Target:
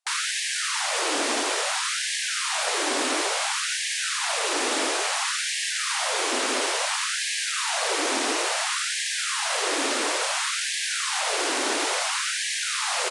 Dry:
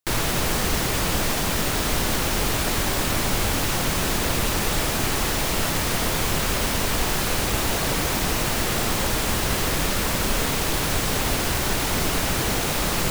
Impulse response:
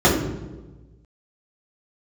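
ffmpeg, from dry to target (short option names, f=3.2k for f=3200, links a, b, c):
-af "aresample=22050,aresample=44100,afftfilt=real='re*gte(b*sr/1024,230*pow(1600/230,0.5+0.5*sin(2*PI*0.58*pts/sr)))':imag='im*gte(b*sr/1024,230*pow(1600/230,0.5+0.5*sin(2*PI*0.58*pts/sr)))':win_size=1024:overlap=0.75,volume=1dB"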